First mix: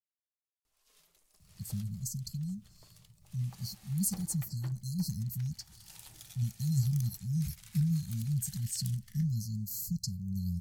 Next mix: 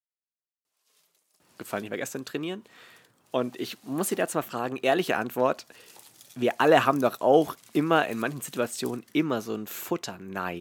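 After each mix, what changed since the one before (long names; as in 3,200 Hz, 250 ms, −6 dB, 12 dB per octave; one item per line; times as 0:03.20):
speech: remove linear-phase brick-wall band-stop 210–4,100 Hz
master: add high-pass filter 220 Hz 12 dB per octave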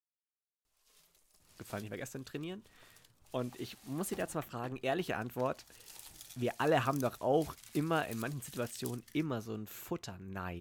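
speech −11.0 dB
master: remove high-pass filter 220 Hz 12 dB per octave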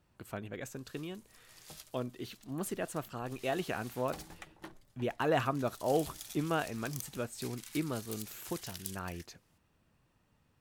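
speech: entry −1.40 s
background +5.0 dB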